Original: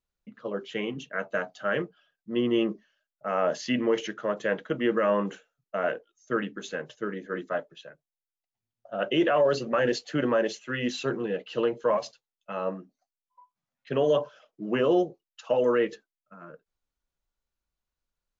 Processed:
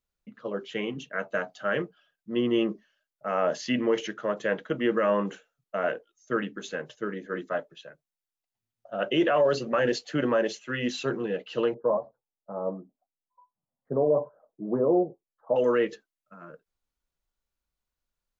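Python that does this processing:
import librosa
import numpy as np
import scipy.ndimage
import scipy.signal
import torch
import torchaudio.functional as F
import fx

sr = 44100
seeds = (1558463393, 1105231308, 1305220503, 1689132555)

y = fx.cheby2_lowpass(x, sr, hz=2500.0, order=4, stop_db=50, at=(11.74, 15.56))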